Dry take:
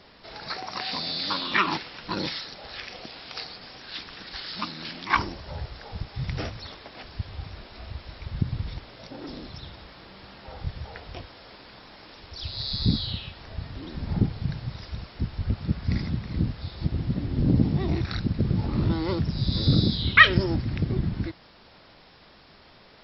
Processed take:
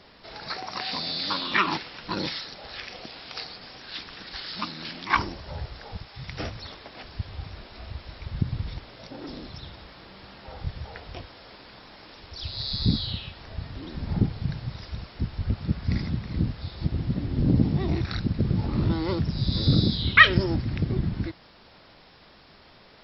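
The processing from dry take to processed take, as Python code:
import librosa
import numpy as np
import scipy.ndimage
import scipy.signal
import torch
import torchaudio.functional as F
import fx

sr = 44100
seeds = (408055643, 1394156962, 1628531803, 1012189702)

y = fx.low_shelf(x, sr, hz=470.0, db=-9.5, at=(5.97, 6.4))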